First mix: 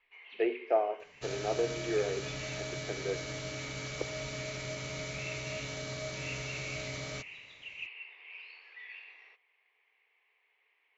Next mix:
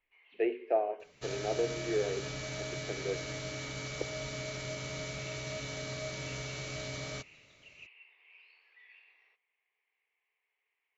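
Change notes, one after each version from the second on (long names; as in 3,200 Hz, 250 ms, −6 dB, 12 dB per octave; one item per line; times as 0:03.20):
speech: add parametric band 1,200 Hz −8 dB 0.77 octaves
first sound −11.0 dB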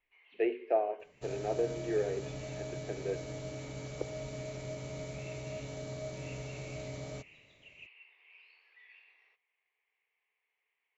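second sound: add flat-topped bell 2,700 Hz −10.5 dB 2.8 octaves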